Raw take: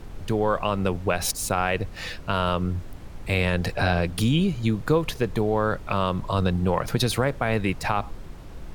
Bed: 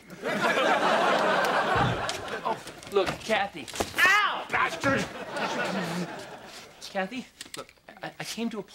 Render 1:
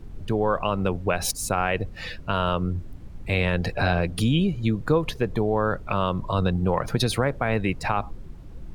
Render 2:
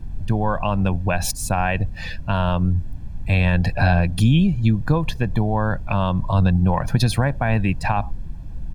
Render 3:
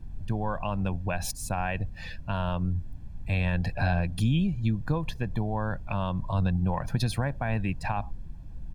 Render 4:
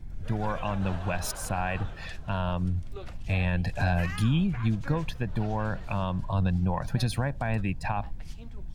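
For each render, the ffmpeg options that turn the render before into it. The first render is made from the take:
ffmpeg -i in.wav -af "afftdn=noise_reduction=10:noise_floor=-39" out.wav
ffmpeg -i in.wav -af "lowshelf=frequency=280:gain=5.5,aecho=1:1:1.2:0.61" out.wav
ffmpeg -i in.wav -af "volume=-9dB" out.wav
ffmpeg -i in.wav -i bed.wav -filter_complex "[1:a]volume=-19dB[link_01];[0:a][link_01]amix=inputs=2:normalize=0" out.wav

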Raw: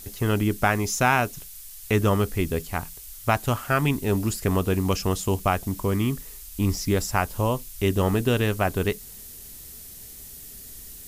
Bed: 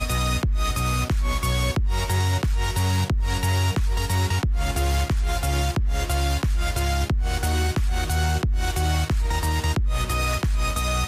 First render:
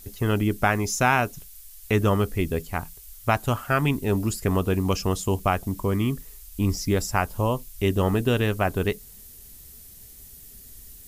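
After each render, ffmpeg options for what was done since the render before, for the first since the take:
ffmpeg -i in.wav -af "afftdn=noise_reduction=6:noise_floor=-42" out.wav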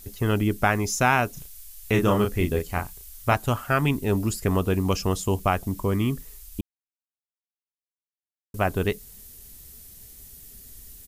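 ffmpeg -i in.wav -filter_complex "[0:a]asplit=3[link_01][link_02][link_03];[link_01]afade=type=out:start_time=1.34:duration=0.02[link_04];[link_02]asplit=2[link_05][link_06];[link_06]adelay=34,volume=-4.5dB[link_07];[link_05][link_07]amix=inputs=2:normalize=0,afade=type=in:start_time=1.34:duration=0.02,afade=type=out:start_time=3.33:duration=0.02[link_08];[link_03]afade=type=in:start_time=3.33:duration=0.02[link_09];[link_04][link_08][link_09]amix=inputs=3:normalize=0,asplit=3[link_10][link_11][link_12];[link_10]atrim=end=6.61,asetpts=PTS-STARTPTS,afade=type=out:start_time=6.606:duration=0.004:curve=hsin[link_13];[link_11]atrim=start=6.61:end=8.54,asetpts=PTS-STARTPTS,volume=0[link_14];[link_12]atrim=start=8.54,asetpts=PTS-STARTPTS,afade=type=in:duration=0.004:curve=hsin[link_15];[link_13][link_14][link_15]concat=n=3:v=0:a=1" out.wav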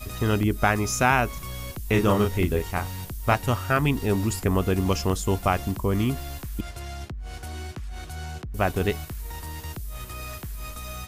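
ffmpeg -i in.wav -i bed.wav -filter_complex "[1:a]volume=-13dB[link_01];[0:a][link_01]amix=inputs=2:normalize=0" out.wav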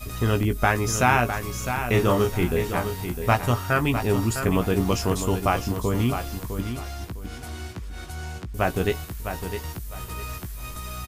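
ffmpeg -i in.wav -filter_complex "[0:a]asplit=2[link_01][link_02];[link_02]adelay=17,volume=-8dB[link_03];[link_01][link_03]amix=inputs=2:normalize=0,aecho=1:1:656|1312|1968:0.376|0.094|0.0235" out.wav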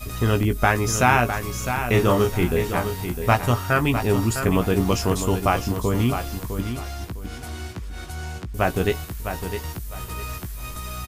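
ffmpeg -i in.wav -af "volume=2dB" out.wav

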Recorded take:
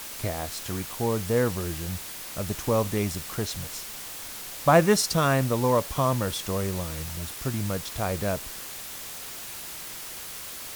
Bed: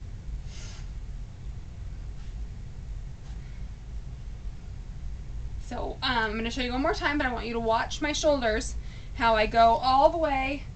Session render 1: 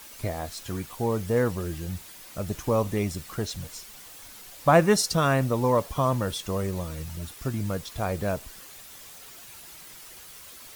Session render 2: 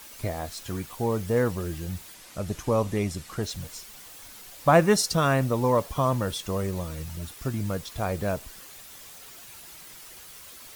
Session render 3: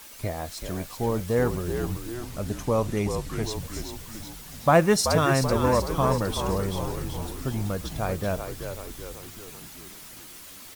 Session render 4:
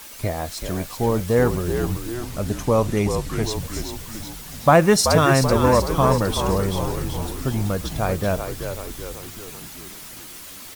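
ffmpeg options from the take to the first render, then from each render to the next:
ffmpeg -i in.wav -af "afftdn=noise_reduction=9:noise_floor=-39" out.wav
ffmpeg -i in.wav -filter_complex "[0:a]asettb=1/sr,asplit=3[link_01][link_02][link_03];[link_01]atrim=end=2.144[link_04];[link_02]atrim=start=2.14:end=3.43,asetpts=PTS-STARTPTS,afade=type=in:duration=0.004:curve=qsin,afade=type=out:start_time=1.286:duration=0.004:curve=qsin,lowpass=12000[link_05];[link_03]atrim=start=3.426[link_06];[link_04][link_05]acrossfade=duration=0.004:curve1=hsin:curve2=qsin[link_07];[link_07][link_06]acrossfade=duration=0.004:curve1=qsin:curve2=hsin" out.wav
ffmpeg -i in.wav -filter_complex "[0:a]asplit=8[link_01][link_02][link_03][link_04][link_05][link_06][link_07][link_08];[link_02]adelay=381,afreqshift=-65,volume=-7dB[link_09];[link_03]adelay=762,afreqshift=-130,volume=-11.9dB[link_10];[link_04]adelay=1143,afreqshift=-195,volume=-16.8dB[link_11];[link_05]adelay=1524,afreqshift=-260,volume=-21.6dB[link_12];[link_06]adelay=1905,afreqshift=-325,volume=-26.5dB[link_13];[link_07]adelay=2286,afreqshift=-390,volume=-31.4dB[link_14];[link_08]adelay=2667,afreqshift=-455,volume=-36.3dB[link_15];[link_01][link_09][link_10][link_11][link_12][link_13][link_14][link_15]amix=inputs=8:normalize=0" out.wav
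ffmpeg -i in.wav -af "volume=5.5dB,alimiter=limit=-3dB:level=0:latency=1" out.wav

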